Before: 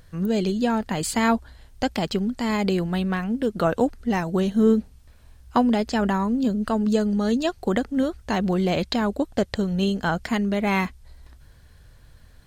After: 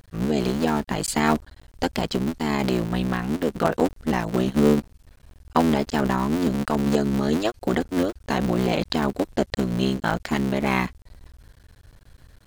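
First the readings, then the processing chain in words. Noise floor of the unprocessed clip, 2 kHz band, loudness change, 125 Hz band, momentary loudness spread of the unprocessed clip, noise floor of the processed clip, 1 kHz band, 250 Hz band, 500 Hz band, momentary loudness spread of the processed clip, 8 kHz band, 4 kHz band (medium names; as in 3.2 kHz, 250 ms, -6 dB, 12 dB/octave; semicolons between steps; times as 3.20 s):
-51 dBFS, +0.5 dB, 0.0 dB, +1.5 dB, 5 LU, -54 dBFS, +0.5 dB, -0.5 dB, 0.0 dB, 5 LU, +1.5 dB, +0.5 dB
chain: cycle switcher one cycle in 3, muted; trim +1.5 dB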